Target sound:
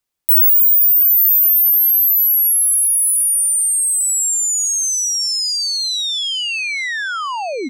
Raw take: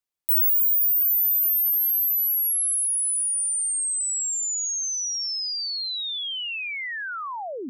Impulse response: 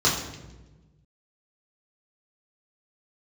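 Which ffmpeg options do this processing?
-filter_complex "[0:a]lowshelf=f=190:g=4,asplit=2[s0][s1];[s1]aecho=0:1:884|1768|2652|3536:0.2|0.0758|0.0288|0.0109[s2];[s0][s2]amix=inputs=2:normalize=0,volume=2.82"

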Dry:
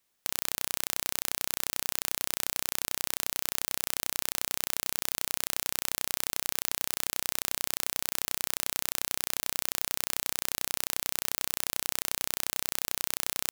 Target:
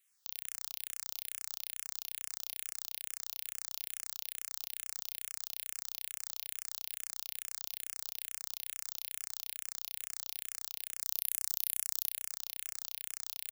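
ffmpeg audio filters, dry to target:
-filter_complex "[0:a]tiltshelf=f=1200:g=-9,alimiter=limit=0.501:level=0:latency=1:release=63,asettb=1/sr,asplit=3[s0][s1][s2];[s0]atrim=end=11.014[s3];[s1]atrim=start=11.01:end=12.09,asetpts=PTS-STARTPTS,afade=t=in:d=0.004:c=qsin,afade=t=out:st=1.076:d=0.004:c=qsin,equalizer=f=13000:w=0.55:g=10.5[s4];[s2]atrim=start=12.086[s5];[s3][s4]acrossfade=d=0.004:c1=hsin:c2=qsin[s6];[s6][s5]acrossfade=d=0.004:c1=qsin:c2=hsin,asplit=2[s7][s8];[s8]aecho=0:1:226:0.398[s9];[s7][s9]amix=inputs=2:normalize=0,asplit=2[s10][s11];[s11]afreqshift=-2.3[s12];[s10][s12]amix=inputs=2:normalize=1,volume=0.631"

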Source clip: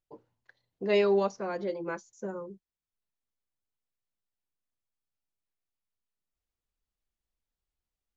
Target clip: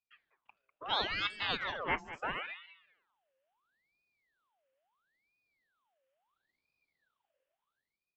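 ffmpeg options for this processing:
-filter_complex "[0:a]afftfilt=real='re*lt(hypot(re,im),0.251)':imag='im*lt(hypot(re,im),0.251)':win_size=1024:overlap=0.75,firequalizer=gain_entry='entry(110,0);entry(410,-8);entry(740,-4);entry(1200,2);entry(2300,10);entry(3500,-11);entry(7900,-16)':delay=0.05:min_phase=1,dynaudnorm=f=500:g=5:m=4.47,asplit=2[s0][s1];[s1]aecho=0:1:198|396|594:0.211|0.0465|0.0102[s2];[s0][s2]amix=inputs=2:normalize=0,aeval=exprs='val(0)*sin(2*PI*1500*n/s+1500*0.65/0.74*sin(2*PI*0.74*n/s))':c=same,volume=0.501"

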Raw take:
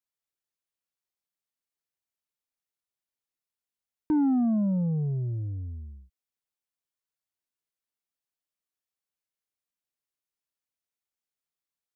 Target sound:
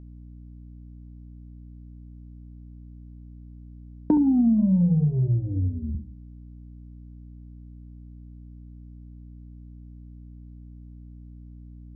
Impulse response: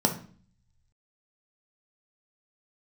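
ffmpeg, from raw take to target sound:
-filter_complex "[1:a]atrim=start_sample=2205,afade=t=out:st=0.21:d=0.01,atrim=end_sample=9702[s0];[0:a][s0]afir=irnorm=-1:irlink=0,asettb=1/sr,asplit=3[s1][s2][s3];[s1]atrim=end=4.174[s4];[s2]atrim=start=4.17:end=5.95,asetpts=PTS-STARTPTS,afade=t=in:d=0.004:c=qsin,afade=t=out:st=1.776:d=0.004:c=qsin,acrossover=split=180|510[s5][s6][s7];[s5]acompressor=threshold=0.316:ratio=4[s8];[s6]acompressor=threshold=0.501:ratio=4[s9];[s7]acompressor=threshold=0.02:ratio=4[s10];[s8][s9][s10]amix=inputs=3:normalize=0[s11];[s3]atrim=start=5.946[s12];[s4][s11]acrossfade=d=0.004:c1=hsin:c2=qsin[s13];[s13][s12]acrossfade=d=0.004:c1=qsin:c2=hsin,lowpass=f=1300:p=1,acompressor=threshold=0.0891:ratio=4,aeval=exprs='val(0)+0.00794*(sin(2*PI*60*n/s)+sin(2*PI*2*60*n/s)/2+sin(2*PI*3*60*n/s)/3+sin(2*PI*4*60*n/s)/4+sin(2*PI*5*60*n/s)/5)':c=same"

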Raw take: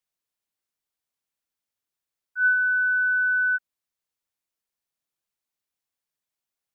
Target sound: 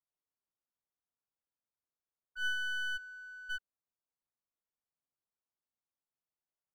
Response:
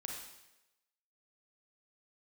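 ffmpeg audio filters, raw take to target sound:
-filter_complex "[0:a]asplit=3[s0][s1][s2];[s0]afade=t=out:st=2.96:d=0.02[s3];[s1]agate=range=0.0224:threshold=0.251:ratio=3:detection=peak,afade=t=in:st=2.96:d=0.02,afade=t=out:st=3.49:d=0.02[s4];[s2]afade=t=in:st=3.49:d=0.02[s5];[s3][s4][s5]amix=inputs=3:normalize=0,lowpass=f=1400:w=0.5412,lowpass=f=1400:w=1.3066,aeval=exprs='clip(val(0),-1,0.00891)':c=same,volume=0.501"

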